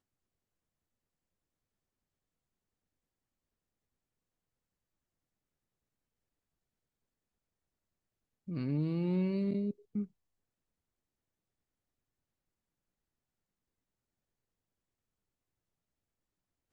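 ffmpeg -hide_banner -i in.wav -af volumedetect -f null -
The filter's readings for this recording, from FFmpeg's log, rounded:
mean_volume: -43.3 dB
max_volume: -23.4 dB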